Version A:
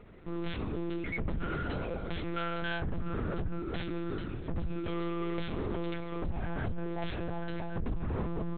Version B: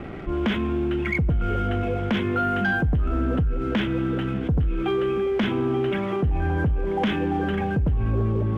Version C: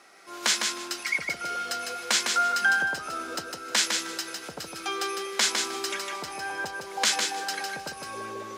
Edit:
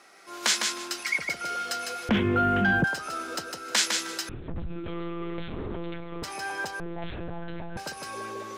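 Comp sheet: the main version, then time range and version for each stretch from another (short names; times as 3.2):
C
2.09–2.84 from B
4.29–6.23 from A
6.8–7.77 from A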